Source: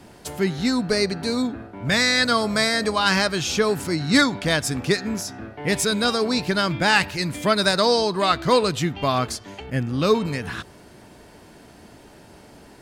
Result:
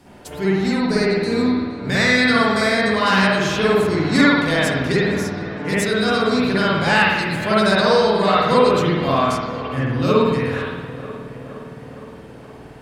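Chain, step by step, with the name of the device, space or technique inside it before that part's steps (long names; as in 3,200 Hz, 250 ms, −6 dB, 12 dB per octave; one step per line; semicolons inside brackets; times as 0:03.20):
dub delay into a spring reverb (feedback echo with a low-pass in the loop 467 ms, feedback 68%, low-pass 3,100 Hz, level −14 dB; spring reverb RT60 1.1 s, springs 52 ms, chirp 70 ms, DRR −8 dB)
level −4.5 dB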